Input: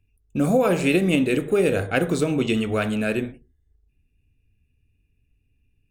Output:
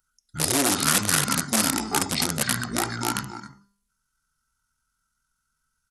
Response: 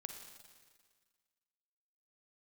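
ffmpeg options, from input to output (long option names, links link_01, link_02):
-filter_complex "[0:a]aecho=1:1:269:0.266,asplit=2[link_01][link_02];[link_02]aeval=exprs='(mod(5.31*val(0)+1,2)-1)/5.31':channel_layout=same,volume=-3.5dB[link_03];[link_01][link_03]amix=inputs=2:normalize=0,equalizer=frequency=100:width=0.62:gain=-2.5,asetrate=24046,aresample=44100,atempo=1.83401,aemphasis=mode=production:type=riaa,bandreject=frequency=199.5:width_type=h:width=4,bandreject=frequency=399:width_type=h:width=4,bandreject=frequency=598.5:width_type=h:width=4,bandreject=frequency=798:width_type=h:width=4,bandreject=frequency=997.5:width_type=h:width=4,bandreject=frequency=1197:width_type=h:width=4,bandreject=frequency=1396.5:width_type=h:width=4,bandreject=frequency=1596:width_type=h:width=4,bandreject=frequency=1795.5:width_type=h:width=4,bandreject=frequency=1995:width_type=h:width=4,bandreject=frequency=2194.5:width_type=h:width=4,bandreject=frequency=2394:width_type=h:width=4,bandreject=frequency=2593.5:width_type=h:width=4,bandreject=frequency=2793:width_type=h:width=4,bandreject=frequency=2992.5:width_type=h:width=4,bandreject=frequency=3192:width_type=h:width=4,bandreject=frequency=3391.5:width_type=h:width=4,bandreject=frequency=3591:width_type=h:width=4,bandreject=frequency=3790.5:width_type=h:width=4,bandreject=frequency=3990:width_type=h:width=4,bandreject=frequency=4189.5:width_type=h:width=4,bandreject=frequency=4389:width_type=h:width=4,bandreject=frequency=4588.5:width_type=h:width=4,bandreject=frequency=4788:width_type=h:width=4,bandreject=frequency=4987.5:width_type=h:width=4,bandreject=frequency=5187:width_type=h:width=4,bandreject=frequency=5386.5:width_type=h:width=4,bandreject=frequency=5586:width_type=h:width=4,bandreject=frequency=5785.5:width_type=h:width=4,bandreject=frequency=5985:width_type=h:width=4,bandreject=frequency=6184.5:width_type=h:width=4,bandreject=frequency=6384:width_type=h:width=4,bandreject=frequency=6583.5:width_type=h:width=4,bandreject=frequency=6783:width_type=h:width=4,bandreject=frequency=6982.5:width_type=h:width=4,bandreject=frequency=7182:width_type=h:width=4,volume=-2.5dB"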